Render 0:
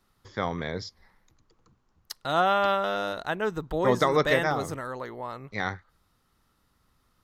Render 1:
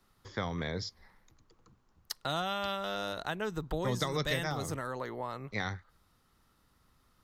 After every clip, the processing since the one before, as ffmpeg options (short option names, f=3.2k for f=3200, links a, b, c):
-filter_complex "[0:a]acrossover=split=170|3000[a][b][c];[b]acompressor=threshold=-33dB:ratio=6[d];[a][d][c]amix=inputs=3:normalize=0"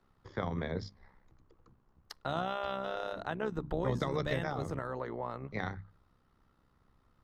-af "lowpass=f=1.2k:p=1,bandreject=f=50:t=h:w=6,bandreject=f=100:t=h:w=6,bandreject=f=150:t=h:w=6,bandreject=f=200:t=h:w=6,bandreject=f=250:t=h:w=6,bandreject=f=300:t=h:w=6,tremolo=f=65:d=0.621,volume=4dB"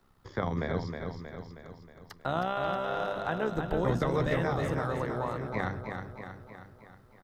-filter_complex "[0:a]acrossover=split=2700[a][b];[b]acompressor=threshold=-56dB:ratio=4:attack=1:release=60[c];[a][c]amix=inputs=2:normalize=0,crystalizer=i=1:c=0,aecho=1:1:316|632|948|1264|1580|1896|2212:0.501|0.276|0.152|0.0834|0.0459|0.0252|0.0139,volume=4dB"